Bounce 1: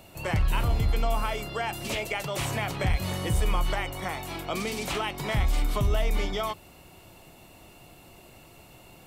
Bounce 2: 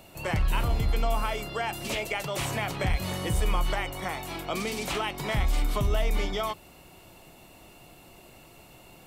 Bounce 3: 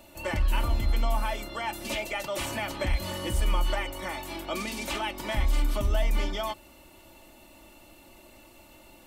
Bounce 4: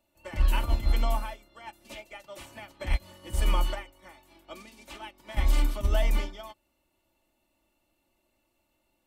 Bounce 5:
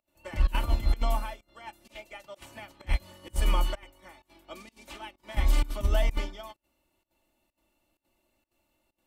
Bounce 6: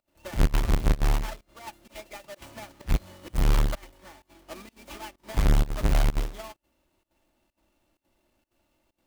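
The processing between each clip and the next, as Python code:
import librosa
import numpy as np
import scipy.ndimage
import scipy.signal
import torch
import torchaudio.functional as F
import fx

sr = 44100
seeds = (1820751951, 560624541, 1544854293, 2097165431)

y1 = fx.peak_eq(x, sr, hz=90.0, db=-3.5, octaves=1.0)
y2 = y1 + 0.75 * np.pad(y1, (int(3.4 * sr / 1000.0), 0))[:len(y1)]
y2 = y2 * librosa.db_to_amplitude(-3.0)
y3 = fx.upward_expand(y2, sr, threshold_db=-37.0, expansion=2.5)
y3 = y3 * librosa.db_to_amplitude(3.5)
y4 = fx.volume_shaper(y3, sr, bpm=128, per_beat=1, depth_db=-21, release_ms=74.0, shape='slow start')
y5 = fx.halfwave_hold(y4, sr)
y5 = y5 * librosa.db_to_amplitude(-2.0)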